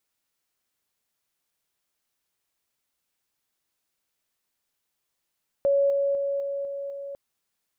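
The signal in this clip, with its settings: level ladder 559 Hz -18 dBFS, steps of -3 dB, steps 6, 0.25 s 0.00 s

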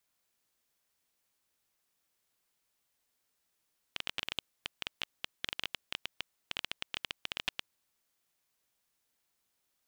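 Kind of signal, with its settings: random clicks 12 per s -16 dBFS 4.00 s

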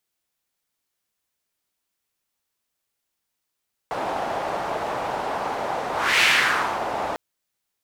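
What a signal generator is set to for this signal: whoosh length 3.25 s, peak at 2.30 s, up 0.31 s, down 0.66 s, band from 770 Hz, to 2.4 kHz, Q 2, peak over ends 10 dB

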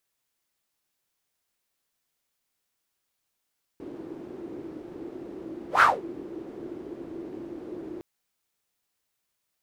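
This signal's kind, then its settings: whoosh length 4.21 s, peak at 2.01 s, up 0.12 s, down 0.22 s, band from 340 Hz, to 1.4 kHz, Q 6.8, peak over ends 22 dB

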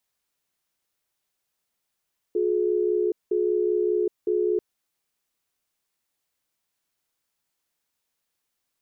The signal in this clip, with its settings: cadence 359 Hz, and 424 Hz, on 0.77 s, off 0.19 s, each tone -23 dBFS 2.24 s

